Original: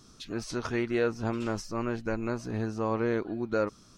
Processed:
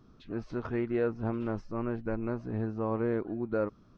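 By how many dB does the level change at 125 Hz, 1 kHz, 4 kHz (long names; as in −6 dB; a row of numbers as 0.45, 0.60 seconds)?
−0.5 dB, −4.5 dB, below −15 dB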